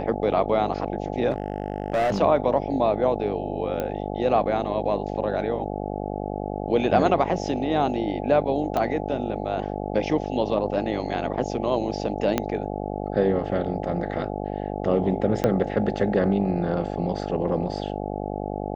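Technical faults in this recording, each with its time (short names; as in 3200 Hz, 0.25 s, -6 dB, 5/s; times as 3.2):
buzz 50 Hz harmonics 17 -30 dBFS
1.3–2.19 clipped -19 dBFS
3.8 pop -15 dBFS
8.77 pop -13 dBFS
12.38 pop -8 dBFS
15.44 pop -9 dBFS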